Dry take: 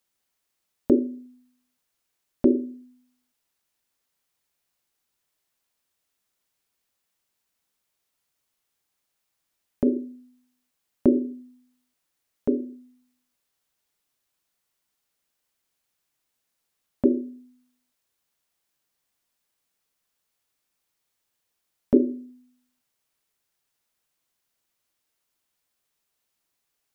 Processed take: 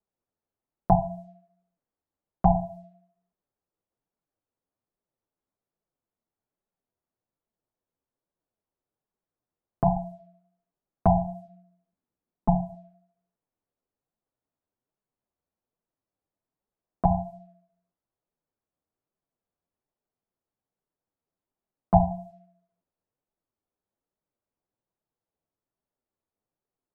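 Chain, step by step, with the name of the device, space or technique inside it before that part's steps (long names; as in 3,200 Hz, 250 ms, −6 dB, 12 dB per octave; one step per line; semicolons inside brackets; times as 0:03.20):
alien voice (ring modulation 430 Hz; flanger 1.2 Hz, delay 4.4 ms, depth 8.4 ms, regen −20%)
low-pass that shuts in the quiet parts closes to 730 Hz, open at −31.5 dBFS
0:11.45–0:12.75: drawn EQ curve 100 Hz 0 dB, 230 Hz +7 dB, 500 Hz −1 dB
level +5.5 dB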